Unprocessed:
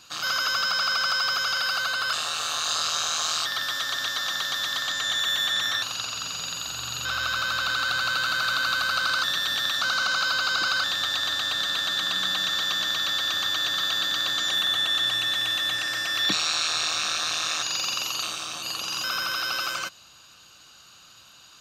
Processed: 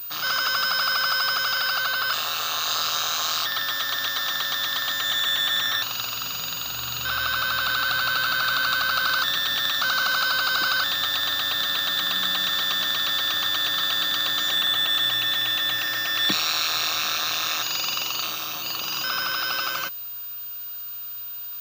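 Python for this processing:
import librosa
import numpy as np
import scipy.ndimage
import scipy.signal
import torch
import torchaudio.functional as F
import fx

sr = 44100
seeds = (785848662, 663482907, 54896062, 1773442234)

y = fx.pwm(x, sr, carrier_hz=15000.0)
y = y * 10.0 ** (2.0 / 20.0)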